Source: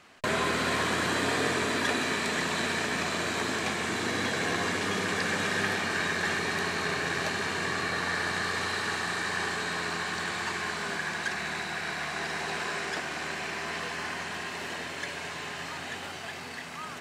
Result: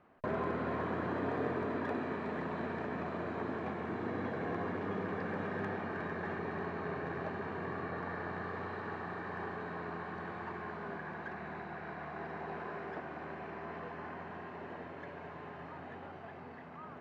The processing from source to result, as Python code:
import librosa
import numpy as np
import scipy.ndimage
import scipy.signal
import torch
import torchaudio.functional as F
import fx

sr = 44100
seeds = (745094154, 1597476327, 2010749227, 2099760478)

y = scipy.signal.sosfilt(scipy.signal.butter(2, 1000.0, 'lowpass', fs=sr, output='sos'), x)
y = fx.slew_limit(y, sr, full_power_hz=53.0)
y = y * 10.0 ** (-4.5 / 20.0)